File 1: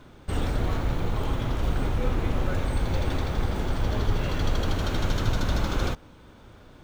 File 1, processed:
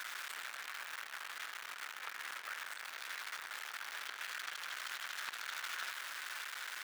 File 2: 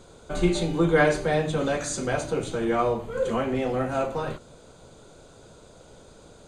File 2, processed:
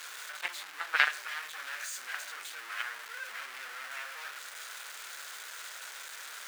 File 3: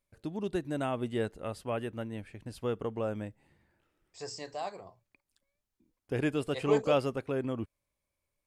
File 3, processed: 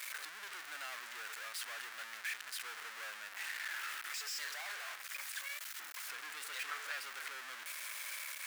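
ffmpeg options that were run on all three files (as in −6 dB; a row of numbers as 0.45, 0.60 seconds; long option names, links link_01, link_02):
-af "aeval=exprs='val(0)+0.5*0.0841*sgn(val(0))':channel_layout=same,aeval=exprs='0.501*(cos(1*acos(clip(val(0)/0.501,-1,1)))-cos(1*PI/2))+0.2*(cos(3*acos(clip(val(0)/0.501,-1,1)))-cos(3*PI/2))':channel_layout=same,highpass=frequency=1600:width_type=q:width=2.1"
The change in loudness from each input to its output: −14.0, −11.0, −8.5 LU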